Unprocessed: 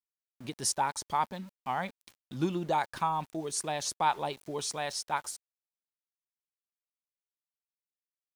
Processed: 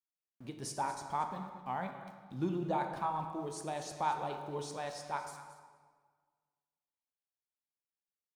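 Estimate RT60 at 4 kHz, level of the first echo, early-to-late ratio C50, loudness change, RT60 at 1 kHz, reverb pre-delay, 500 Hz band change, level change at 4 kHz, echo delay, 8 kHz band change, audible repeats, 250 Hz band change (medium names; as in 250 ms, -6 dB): 1.1 s, -14.5 dB, 6.0 dB, -5.5 dB, 1.5 s, 12 ms, -3.5 dB, -11.5 dB, 228 ms, -13.0 dB, 1, -3.0 dB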